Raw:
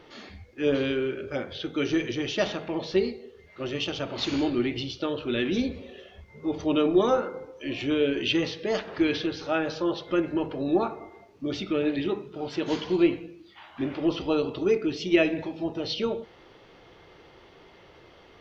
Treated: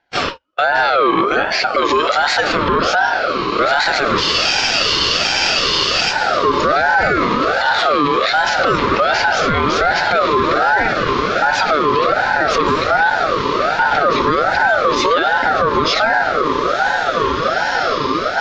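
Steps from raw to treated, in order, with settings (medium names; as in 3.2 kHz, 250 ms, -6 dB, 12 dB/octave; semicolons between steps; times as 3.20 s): Chebyshev high-pass 150 Hz, order 4; gate -46 dBFS, range -44 dB; compression 2.5:1, threshold -40 dBFS, peak gain reduction 16.5 dB; distance through air 66 m; echo that smears into a reverb 1987 ms, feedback 63%, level -8.5 dB; loudness maximiser +35.5 dB; spectral freeze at 4.23 s, 1.90 s; ring modulator with a swept carrier 950 Hz, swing 25%, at 1.3 Hz; trim -3.5 dB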